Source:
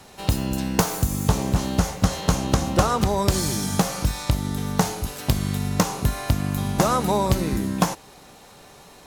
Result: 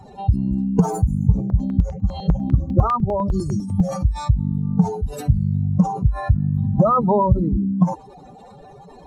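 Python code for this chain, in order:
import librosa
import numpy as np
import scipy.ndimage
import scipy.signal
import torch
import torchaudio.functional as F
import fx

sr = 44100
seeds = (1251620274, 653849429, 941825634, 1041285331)

y = fx.spec_expand(x, sr, power=2.8)
y = fx.peak_eq(y, sr, hz=9000.0, db=6.0, octaves=0.63)
y = fx.phaser_held(y, sr, hz=10.0, low_hz=260.0, high_hz=3600.0, at=(1.4, 3.89))
y = F.gain(torch.from_numpy(y), 5.0).numpy()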